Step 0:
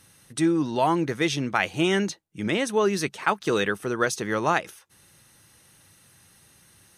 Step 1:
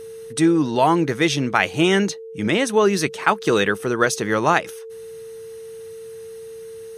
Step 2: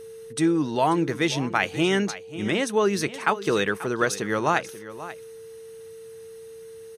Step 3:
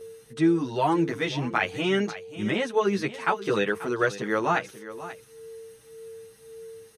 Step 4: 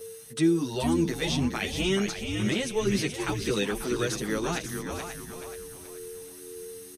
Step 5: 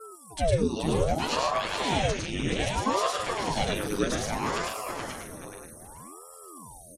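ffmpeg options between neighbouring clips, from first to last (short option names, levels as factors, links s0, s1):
-af "aeval=exprs='val(0)+0.0112*sin(2*PI*450*n/s)':c=same,volume=1.88"
-af "aecho=1:1:537:0.178,volume=0.562"
-filter_complex "[0:a]acrossover=split=4300[s0][s1];[s1]acompressor=threshold=0.00501:ratio=4:attack=1:release=60[s2];[s0][s2]amix=inputs=2:normalize=0,asplit=2[s3][s4];[s4]adelay=8.7,afreqshift=1.8[s5];[s3][s5]amix=inputs=2:normalize=1,volume=1.12"
-filter_complex "[0:a]acrossover=split=420|3000[s0][s1][s2];[s1]acompressor=threshold=0.01:ratio=3[s3];[s0][s3][s2]amix=inputs=3:normalize=0,crystalizer=i=2.5:c=0,asplit=6[s4][s5][s6][s7][s8][s9];[s5]adelay=427,afreqshift=-85,volume=0.473[s10];[s6]adelay=854,afreqshift=-170,volume=0.188[s11];[s7]adelay=1281,afreqshift=-255,volume=0.0759[s12];[s8]adelay=1708,afreqshift=-340,volume=0.0302[s13];[s9]adelay=2135,afreqshift=-425,volume=0.0122[s14];[s4][s10][s11][s12][s13][s14]amix=inputs=6:normalize=0"
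-af "afftfilt=real='re*gte(hypot(re,im),0.00562)':imag='im*gte(hypot(re,im),0.00562)':win_size=1024:overlap=0.75,aecho=1:1:105|145.8:0.891|0.501,aeval=exprs='val(0)*sin(2*PI*470*n/s+470*0.9/0.63*sin(2*PI*0.63*n/s))':c=same"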